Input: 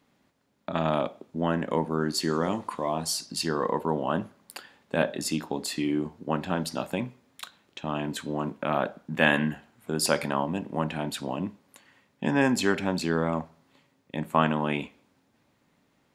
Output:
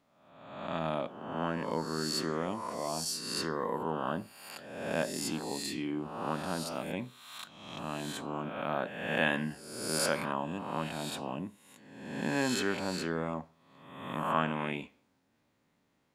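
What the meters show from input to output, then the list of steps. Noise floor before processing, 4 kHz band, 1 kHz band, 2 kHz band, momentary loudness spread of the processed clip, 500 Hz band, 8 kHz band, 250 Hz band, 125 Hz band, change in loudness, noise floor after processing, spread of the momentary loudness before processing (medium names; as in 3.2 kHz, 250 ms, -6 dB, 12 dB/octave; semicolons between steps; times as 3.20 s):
-69 dBFS, -3.5 dB, -5.5 dB, -5.5 dB, 14 LU, -6.5 dB, -3.5 dB, -7.5 dB, -7.5 dB, -6.0 dB, -74 dBFS, 14 LU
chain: reverse spectral sustain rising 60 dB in 1.04 s; trim -9 dB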